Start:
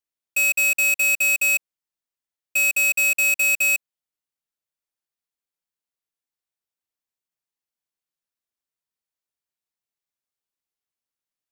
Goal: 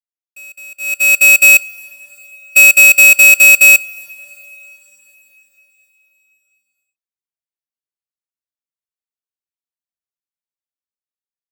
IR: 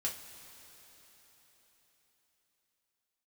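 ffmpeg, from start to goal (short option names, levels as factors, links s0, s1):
-filter_complex "[0:a]dynaudnorm=f=200:g=9:m=2.37,agate=range=0.0708:threshold=0.178:ratio=16:detection=peak,asplit=2[s0][s1];[1:a]atrim=start_sample=2205[s2];[s1][s2]afir=irnorm=-1:irlink=0,volume=0.168[s3];[s0][s3]amix=inputs=2:normalize=0,volume=1.78"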